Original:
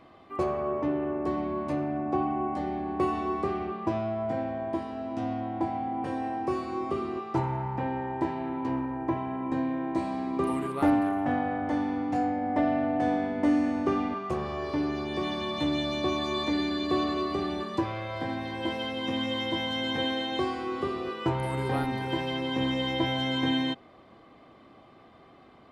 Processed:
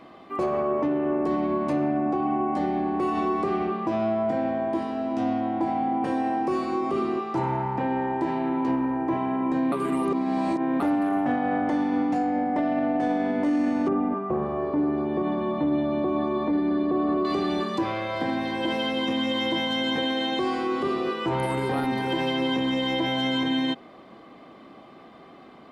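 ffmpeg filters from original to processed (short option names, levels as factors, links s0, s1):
-filter_complex "[0:a]asettb=1/sr,asplit=3[s0][s1][s2];[s0]atrim=end=13.884[s3];[s1]atrim=start=13.88:end=17.25,asetpts=PTS-STARTPTS,afade=t=in:d=0.004:c=qsin,afade=t=out:st=3.366:d=0.004:c=qsin,lowpass=1100[s4];[s2]atrim=start=17.246[s5];[s3][s4]acrossfade=d=0.004:c1=hsin:c2=qsin[s6];[s6][s5]acrossfade=d=0.004:c1=qsin:c2=hsin,asplit=3[s7][s8][s9];[s7]atrim=end=9.722[s10];[s8]atrim=start=9.718:end=10.802,asetpts=PTS-STARTPTS,areverse[s11];[s9]atrim=start=10.798[s12];[s10][s11]acrossfade=d=0.004:c1=hsin:c2=hsin[s13];[s13][s12]acrossfade=d=0.004:c1=hsin:c2=hsin,lowshelf=f=140:t=q:w=1.5:g=-7,alimiter=limit=0.0708:level=0:latency=1,volume=2"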